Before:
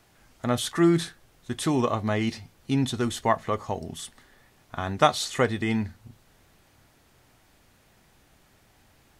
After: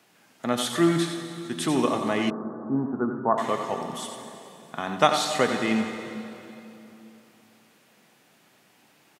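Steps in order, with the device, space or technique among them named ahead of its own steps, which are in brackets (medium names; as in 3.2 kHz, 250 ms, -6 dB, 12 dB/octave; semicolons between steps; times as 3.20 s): PA in a hall (high-pass 160 Hz 24 dB/octave; peaking EQ 2.7 kHz +3.5 dB 0.49 oct; delay 90 ms -8.5 dB; reverberation RT60 3.1 s, pre-delay 59 ms, DRR 6.5 dB); 2.30–3.38 s: steep low-pass 1.5 kHz 72 dB/octave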